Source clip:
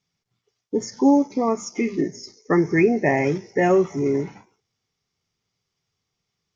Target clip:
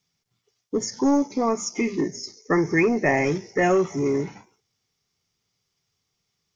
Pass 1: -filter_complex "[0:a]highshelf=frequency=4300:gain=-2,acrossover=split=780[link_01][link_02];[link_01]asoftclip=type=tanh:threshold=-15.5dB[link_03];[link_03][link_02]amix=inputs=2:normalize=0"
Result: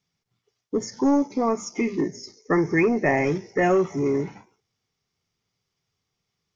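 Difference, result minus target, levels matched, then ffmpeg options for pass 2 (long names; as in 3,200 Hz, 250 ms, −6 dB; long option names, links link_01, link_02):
8,000 Hz band −5.5 dB
-filter_complex "[0:a]highshelf=frequency=4300:gain=6.5,acrossover=split=780[link_01][link_02];[link_01]asoftclip=type=tanh:threshold=-15.5dB[link_03];[link_03][link_02]amix=inputs=2:normalize=0"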